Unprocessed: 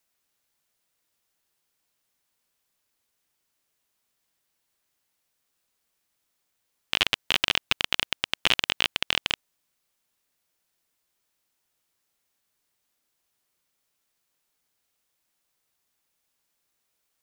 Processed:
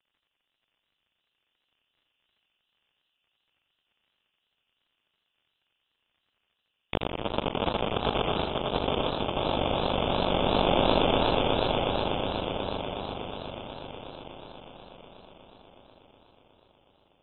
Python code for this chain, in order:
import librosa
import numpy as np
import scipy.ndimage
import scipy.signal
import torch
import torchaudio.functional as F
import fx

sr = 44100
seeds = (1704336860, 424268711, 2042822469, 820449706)

y = fx.env_lowpass(x, sr, base_hz=1100.0, full_db=-24.5)
y = fx.env_phaser(y, sr, low_hz=220.0, high_hz=1600.0, full_db=-35.0)
y = fx.echo_swell(y, sr, ms=122, loudest=8, wet_db=-9.5)
y = fx.dmg_crackle(y, sr, seeds[0], per_s=52.0, level_db=-63.0)
y = fx.over_compress(y, sr, threshold_db=-31.0, ratio=-0.5)
y = fx.freq_invert(y, sr, carrier_hz=3500)
y = fx.echo_warbled(y, sr, ms=86, feedback_pct=50, rate_hz=2.8, cents=171, wet_db=-4.5)
y = y * librosa.db_to_amplitude(4.5)